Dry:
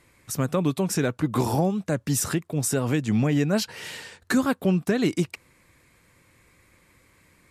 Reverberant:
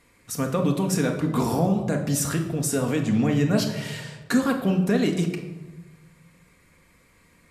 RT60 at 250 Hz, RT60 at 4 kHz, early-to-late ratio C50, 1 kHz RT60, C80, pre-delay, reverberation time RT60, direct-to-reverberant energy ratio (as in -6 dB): 1.5 s, 0.70 s, 8.0 dB, 1.1 s, 10.5 dB, 4 ms, 1.2 s, 2.5 dB